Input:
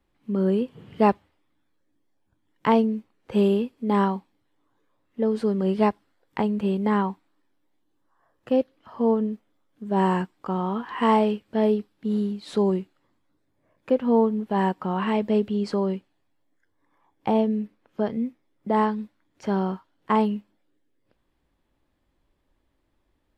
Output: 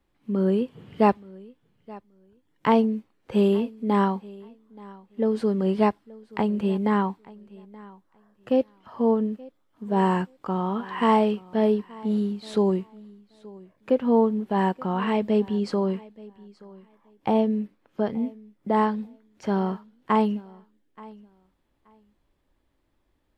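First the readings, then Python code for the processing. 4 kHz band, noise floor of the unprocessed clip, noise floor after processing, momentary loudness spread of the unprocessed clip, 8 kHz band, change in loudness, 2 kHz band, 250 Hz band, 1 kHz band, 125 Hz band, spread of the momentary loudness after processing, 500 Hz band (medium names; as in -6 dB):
0.0 dB, -72 dBFS, -70 dBFS, 13 LU, no reading, 0.0 dB, 0.0 dB, 0.0 dB, 0.0 dB, 0.0 dB, 14 LU, 0.0 dB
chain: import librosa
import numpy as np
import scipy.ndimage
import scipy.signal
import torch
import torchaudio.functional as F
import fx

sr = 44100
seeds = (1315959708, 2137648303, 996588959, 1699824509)

y = fx.echo_feedback(x, sr, ms=877, feedback_pct=18, wet_db=-22)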